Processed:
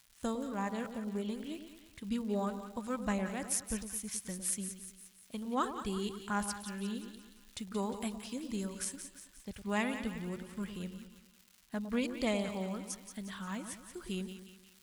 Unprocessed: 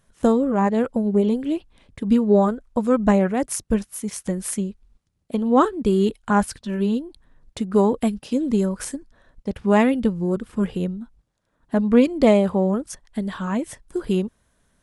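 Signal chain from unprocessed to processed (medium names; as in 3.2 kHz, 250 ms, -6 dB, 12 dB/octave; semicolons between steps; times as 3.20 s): crackle 270 per s -40 dBFS; amplifier tone stack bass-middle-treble 5-5-5; two-band feedback delay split 1 kHz, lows 107 ms, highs 177 ms, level -9 dB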